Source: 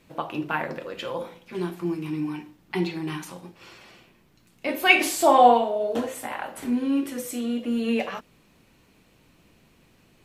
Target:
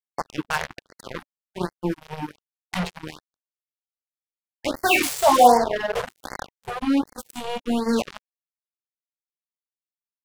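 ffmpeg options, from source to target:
-af "bandreject=f=50:t=h:w=6,bandreject=f=100:t=h:w=6,bandreject=f=150:t=h:w=6,bandreject=f=200:t=h:w=6,acrusher=bits=3:mix=0:aa=0.5,afftfilt=real='re*(1-between(b*sr/1024,250*pow(3100/250,0.5+0.5*sin(2*PI*1.3*pts/sr))/1.41,250*pow(3100/250,0.5+0.5*sin(2*PI*1.3*pts/sr))*1.41))':imag='im*(1-between(b*sr/1024,250*pow(3100/250,0.5+0.5*sin(2*PI*1.3*pts/sr))/1.41,250*pow(3100/250,0.5+0.5*sin(2*PI*1.3*pts/sr))*1.41))':win_size=1024:overlap=0.75,volume=2dB"

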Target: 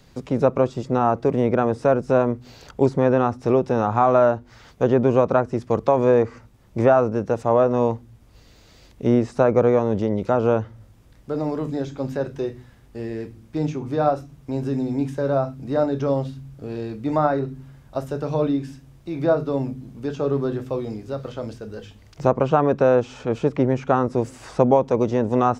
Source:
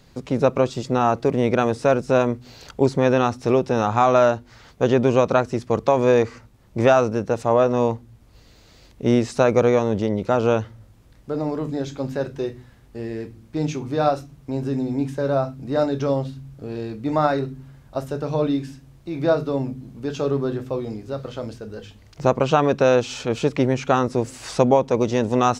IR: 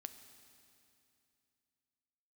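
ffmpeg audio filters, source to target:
-filter_complex "[0:a]acrossover=split=580|1700[a][b][c];[c]acompressor=threshold=-46dB:ratio=6[d];[a][b][d]amix=inputs=3:normalize=0,bandreject=f=4.2k:w=27"

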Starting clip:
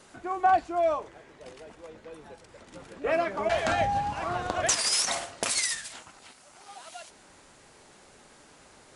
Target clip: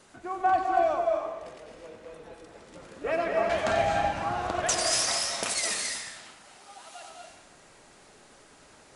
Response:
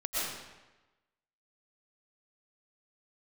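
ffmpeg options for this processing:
-filter_complex "[0:a]asplit=2[a][b];[1:a]atrim=start_sample=2205,adelay=92[c];[b][c]afir=irnorm=-1:irlink=0,volume=-7.5dB[d];[a][d]amix=inputs=2:normalize=0,volume=-2.5dB"

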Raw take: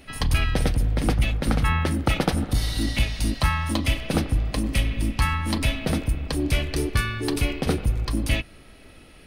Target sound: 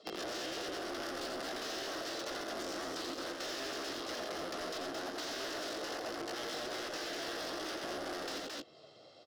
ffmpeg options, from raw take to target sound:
-filter_complex "[0:a]afwtdn=0.0251,equalizer=f=3.8k:w=4.6:g=-11,aecho=1:1:2.5:0.46,acompressor=threshold=-27dB:ratio=2,aeval=exprs='(mod(26.6*val(0)+1,2)-1)/26.6':c=same,asetrate=72056,aresample=44100,atempo=0.612027,highpass=f=280:w=0.5412,highpass=f=280:w=1.3066,equalizer=f=330:t=q:w=4:g=6,equalizer=f=650:t=q:w=4:g=5,equalizer=f=930:t=q:w=4:g=-9,equalizer=f=2.3k:t=q:w=4:g=-10,equalizer=f=5.3k:t=q:w=4:g=5,lowpass=f=6.3k:w=0.5412,lowpass=f=6.3k:w=1.3066,asoftclip=type=tanh:threshold=-36.5dB,asplit=2[a][b];[b]aecho=0:1:86|219:0.562|0.531[c];[a][c]amix=inputs=2:normalize=0,acrossover=split=790|4100[d][e][f];[d]acompressor=threshold=-52dB:ratio=4[g];[e]acompressor=threshold=-52dB:ratio=4[h];[f]acompressor=threshold=-58dB:ratio=4[i];[g][h][i]amix=inputs=3:normalize=0,volume=8dB"

